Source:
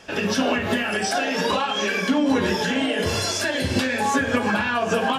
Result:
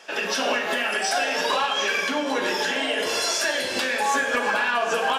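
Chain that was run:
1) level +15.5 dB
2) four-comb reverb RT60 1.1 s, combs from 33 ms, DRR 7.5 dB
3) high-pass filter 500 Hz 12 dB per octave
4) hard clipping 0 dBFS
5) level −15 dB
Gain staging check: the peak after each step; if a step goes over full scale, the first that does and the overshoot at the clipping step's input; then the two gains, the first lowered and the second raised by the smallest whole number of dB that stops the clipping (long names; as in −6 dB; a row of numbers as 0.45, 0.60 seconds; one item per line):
+6.5, +7.0, +5.0, 0.0, −15.0 dBFS
step 1, 5.0 dB
step 1 +10.5 dB, step 5 −10 dB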